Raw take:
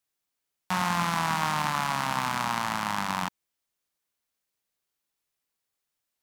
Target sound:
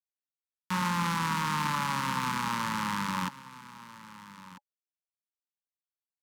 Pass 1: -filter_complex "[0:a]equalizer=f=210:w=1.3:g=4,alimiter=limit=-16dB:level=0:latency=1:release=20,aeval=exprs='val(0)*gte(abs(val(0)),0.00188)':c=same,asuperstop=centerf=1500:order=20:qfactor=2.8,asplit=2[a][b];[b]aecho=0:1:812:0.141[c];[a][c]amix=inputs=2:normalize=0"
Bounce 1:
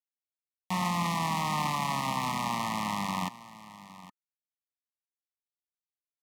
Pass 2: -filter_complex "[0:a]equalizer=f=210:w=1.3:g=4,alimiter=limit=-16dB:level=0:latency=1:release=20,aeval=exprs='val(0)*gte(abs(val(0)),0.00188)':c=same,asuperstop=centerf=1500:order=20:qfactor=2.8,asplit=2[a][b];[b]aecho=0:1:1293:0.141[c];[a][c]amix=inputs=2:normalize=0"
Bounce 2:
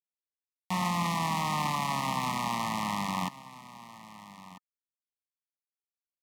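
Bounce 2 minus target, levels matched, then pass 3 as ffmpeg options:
500 Hz band +6.0 dB
-filter_complex "[0:a]equalizer=f=210:w=1.3:g=4,alimiter=limit=-16dB:level=0:latency=1:release=20,aeval=exprs='val(0)*gte(abs(val(0)),0.00188)':c=same,asuperstop=centerf=700:order=20:qfactor=2.8,asplit=2[a][b];[b]aecho=0:1:1293:0.141[c];[a][c]amix=inputs=2:normalize=0"

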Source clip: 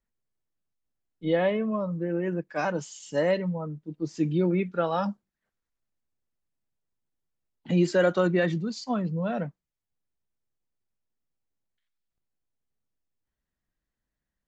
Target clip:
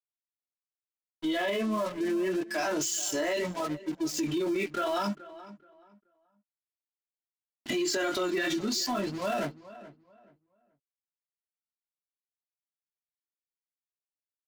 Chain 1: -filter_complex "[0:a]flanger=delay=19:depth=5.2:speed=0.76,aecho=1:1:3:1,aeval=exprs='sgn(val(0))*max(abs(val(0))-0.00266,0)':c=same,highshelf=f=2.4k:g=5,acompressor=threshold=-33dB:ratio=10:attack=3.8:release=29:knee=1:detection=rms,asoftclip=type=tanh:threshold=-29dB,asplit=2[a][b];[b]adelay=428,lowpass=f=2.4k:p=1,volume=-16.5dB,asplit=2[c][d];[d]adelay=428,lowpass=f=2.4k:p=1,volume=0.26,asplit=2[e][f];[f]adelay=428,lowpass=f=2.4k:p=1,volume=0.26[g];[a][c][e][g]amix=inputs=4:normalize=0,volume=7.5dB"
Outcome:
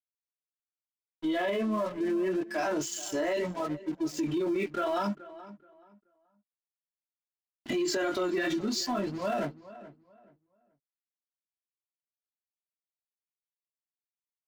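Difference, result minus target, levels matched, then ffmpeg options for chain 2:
4000 Hz band -3.0 dB
-filter_complex "[0:a]flanger=delay=19:depth=5.2:speed=0.76,aecho=1:1:3:1,aeval=exprs='sgn(val(0))*max(abs(val(0))-0.00266,0)':c=same,highshelf=f=2.4k:g=14.5,acompressor=threshold=-33dB:ratio=10:attack=3.8:release=29:knee=1:detection=rms,asoftclip=type=tanh:threshold=-29dB,asplit=2[a][b];[b]adelay=428,lowpass=f=2.4k:p=1,volume=-16.5dB,asplit=2[c][d];[d]adelay=428,lowpass=f=2.4k:p=1,volume=0.26,asplit=2[e][f];[f]adelay=428,lowpass=f=2.4k:p=1,volume=0.26[g];[a][c][e][g]amix=inputs=4:normalize=0,volume=7.5dB"

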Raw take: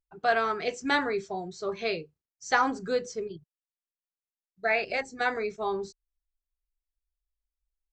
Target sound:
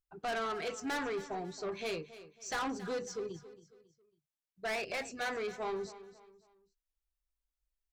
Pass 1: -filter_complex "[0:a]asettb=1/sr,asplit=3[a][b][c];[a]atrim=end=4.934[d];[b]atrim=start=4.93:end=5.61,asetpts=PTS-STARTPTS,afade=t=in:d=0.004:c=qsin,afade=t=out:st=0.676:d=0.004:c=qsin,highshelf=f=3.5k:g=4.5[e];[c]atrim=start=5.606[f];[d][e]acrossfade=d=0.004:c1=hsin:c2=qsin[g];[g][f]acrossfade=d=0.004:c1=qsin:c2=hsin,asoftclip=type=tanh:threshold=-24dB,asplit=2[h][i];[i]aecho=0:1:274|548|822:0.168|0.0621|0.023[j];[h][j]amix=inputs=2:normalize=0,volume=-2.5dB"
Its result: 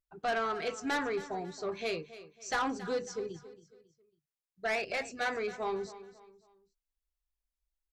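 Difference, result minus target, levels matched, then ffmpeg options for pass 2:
soft clip: distortion -4 dB
-filter_complex "[0:a]asettb=1/sr,asplit=3[a][b][c];[a]atrim=end=4.934[d];[b]atrim=start=4.93:end=5.61,asetpts=PTS-STARTPTS,afade=t=in:d=0.004:c=qsin,afade=t=out:st=0.676:d=0.004:c=qsin,highshelf=f=3.5k:g=4.5[e];[c]atrim=start=5.606[f];[d][e]acrossfade=d=0.004:c1=hsin:c2=qsin[g];[g][f]acrossfade=d=0.004:c1=qsin:c2=hsin,asoftclip=type=tanh:threshold=-30dB,asplit=2[h][i];[i]aecho=0:1:274|548|822:0.168|0.0621|0.023[j];[h][j]amix=inputs=2:normalize=0,volume=-2.5dB"

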